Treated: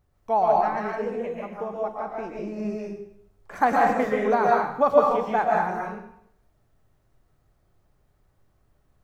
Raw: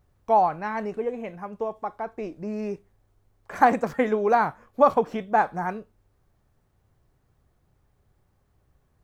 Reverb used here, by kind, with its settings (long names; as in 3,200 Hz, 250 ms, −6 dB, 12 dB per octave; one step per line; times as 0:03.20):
comb and all-pass reverb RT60 0.7 s, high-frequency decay 0.95×, pre-delay 95 ms, DRR −3 dB
level −3.5 dB